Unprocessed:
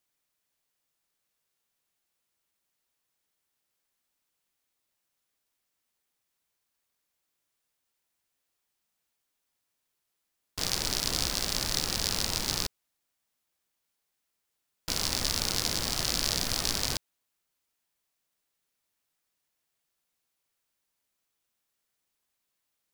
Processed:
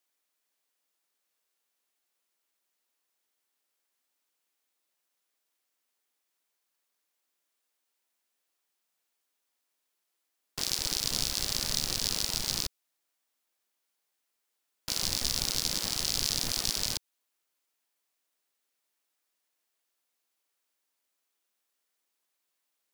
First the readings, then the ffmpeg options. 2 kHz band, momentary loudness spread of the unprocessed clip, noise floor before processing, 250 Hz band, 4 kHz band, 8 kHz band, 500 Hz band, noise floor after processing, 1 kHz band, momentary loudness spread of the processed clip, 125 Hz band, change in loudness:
-4.0 dB, 6 LU, -82 dBFS, -4.0 dB, -0.5 dB, 0.0 dB, -5.0 dB, -82 dBFS, -5.5 dB, 6 LU, -3.5 dB, -0.5 dB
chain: -filter_complex "[0:a]acrossover=split=210|2600[s0][s1][s2];[s0]acrusher=bits=4:dc=4:mix=0:aa=0.000001[s3];[s1]alimiter=level_in=3.16:limit=0.0631:level=0:latency=1:release=299,volume=0.316[s4];[s3][s4][s2]amix=inputs=3:normalize=0"

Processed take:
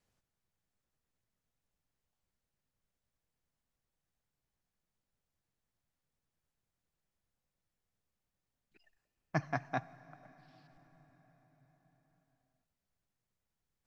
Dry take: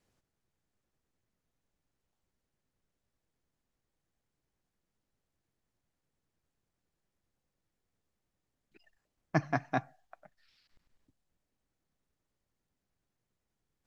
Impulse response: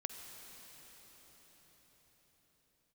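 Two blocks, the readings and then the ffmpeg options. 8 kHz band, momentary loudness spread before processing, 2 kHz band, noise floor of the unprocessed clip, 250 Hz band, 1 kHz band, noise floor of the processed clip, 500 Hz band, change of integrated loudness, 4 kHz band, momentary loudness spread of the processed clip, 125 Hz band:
no reading, 4 LU, -3.5 dB, under -85 dBFS, -6.0 dB, -4.0 dB, under -85 dBFS, -4.5 dB, -4.5 dB, -3.0 dB, 21 LU, -4.0 dB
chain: -filter_complex "[0:a]equalizer=f=330:t=o:w=1:g=-5,asplit=2[s0][s1];[1:a]atrim=start_sample=2205[s2];[s1][s2]afir=irnorm=-1:irlink=0,volume=0.299[s3];[s0][s3]amix=inputs=2:normalize=0,volume=0.562"

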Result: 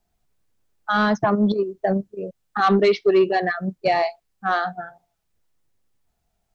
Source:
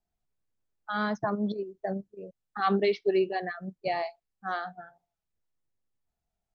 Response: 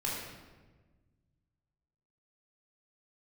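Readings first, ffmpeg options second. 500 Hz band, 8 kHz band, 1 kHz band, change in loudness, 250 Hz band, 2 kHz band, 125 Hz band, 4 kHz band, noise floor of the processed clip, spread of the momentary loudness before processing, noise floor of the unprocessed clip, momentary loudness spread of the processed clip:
+9.5 dB, no reading, +10.0 dB, +9.5 dB, +10.0 dB, +10.0 dB, +10.0 dB, +9.0 dB, -74 dBFS, 16 LU, under -85 dBFS, 15 LU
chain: -filter_complex "[0:a]asplit=2[s0][s1];[s1]alimiter=limit=0.075:level=0:latency=1:release=134,volume=1.06[s2];[s0][s2]amix=inputs=2:normalize=0,asoftclip=type=tanh:threshold=0.2,volume=2"

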